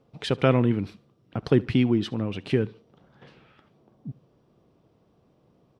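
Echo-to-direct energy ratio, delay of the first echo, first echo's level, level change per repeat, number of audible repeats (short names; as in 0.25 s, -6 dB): -22.5 dB, 72 ms, -23.0 dB, -10.0 dB, 2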